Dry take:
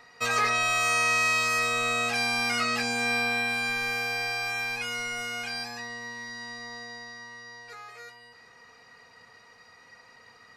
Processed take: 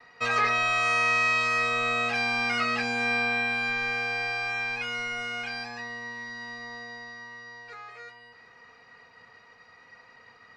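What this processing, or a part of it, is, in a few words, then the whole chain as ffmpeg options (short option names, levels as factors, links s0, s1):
hearing-loss simulation: -af "lowpass=2400,highshelf=f=3600:g=12,agate=range=0.0224:threshold=0.00224:ratio=3:detection=peak"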